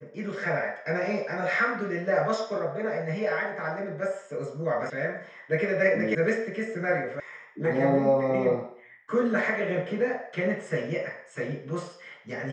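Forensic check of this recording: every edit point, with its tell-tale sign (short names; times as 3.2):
4.9 sound cut off
6.15 sound cut off
7.2 sound cut off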